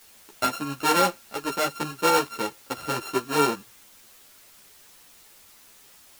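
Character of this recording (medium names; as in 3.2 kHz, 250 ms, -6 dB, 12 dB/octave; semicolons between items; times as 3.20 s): a buzz of ramps at a fixed pitch in blocks of 32 samples; tremolo saw up 11 Hz, depth 30%; a quantiser's noise floor 8-bit, dither triangular; a shimmering, thickened sound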